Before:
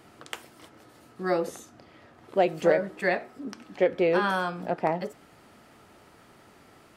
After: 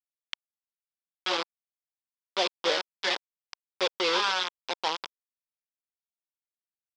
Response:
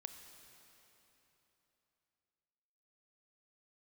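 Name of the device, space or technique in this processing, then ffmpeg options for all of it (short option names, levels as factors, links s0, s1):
hand-held game console: -af "acrusher=bits=3:mix=0:aa=0.000001,highpass=500,equalizer=f=650:t=q:w=4:g=-9,equalizer=f=1000:t=q:w=4:g=4,equalizer=f=1800:t=q:w=4:g=-4,equalizer=f=3400:t=q:w=4:g=9,equalizer=f=5000:t=q:w=4:g=6,lowpass=f=5400:w=0.5412,lowpass=f=5400:w=1.3066,volume=0.794"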